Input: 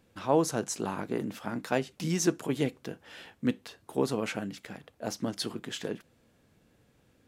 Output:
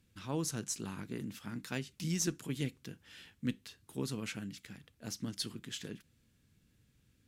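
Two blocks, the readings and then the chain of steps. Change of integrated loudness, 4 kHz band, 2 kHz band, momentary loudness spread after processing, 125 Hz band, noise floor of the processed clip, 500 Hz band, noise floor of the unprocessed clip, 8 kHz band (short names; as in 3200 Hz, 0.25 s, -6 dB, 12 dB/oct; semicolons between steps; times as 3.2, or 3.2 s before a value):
-7.5 dB, -3.5 dB, -7.0 dB, 15 LU, -3.0 dB, -72 dBFS, -14.0 dB, -67 dBFS, -2.5 dB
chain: passive tone stack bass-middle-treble 6-0-2; added harmonics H 2 -21 dB, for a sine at -33 dBFS; gain +12 dB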